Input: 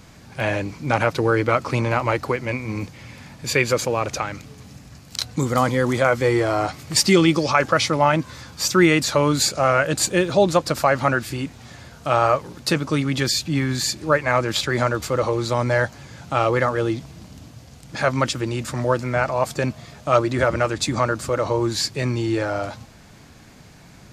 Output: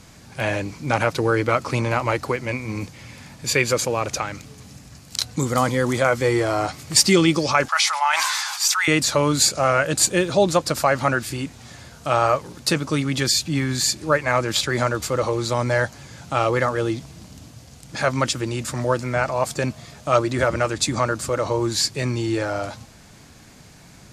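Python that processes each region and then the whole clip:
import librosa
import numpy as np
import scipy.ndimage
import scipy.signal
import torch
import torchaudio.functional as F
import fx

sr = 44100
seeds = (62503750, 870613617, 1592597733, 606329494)

y = fx.chain(x, sr, fx.ellip_highpass(hz=800.0, order=4, stop_db=50),
    fx.sustainer(db_per_s=28.0), at=(7.68, 8.88))
y = scipy.signal.sosfilt(scipy.signal.butter(2, 11000.0, 'lowpass', fs=sr, output='sos'), y)
y = fx.high_shelf(y, sr, hz=7300.0, db=11.0)
y = F.gain(torch.from_numpy(y), -1.0).numpy()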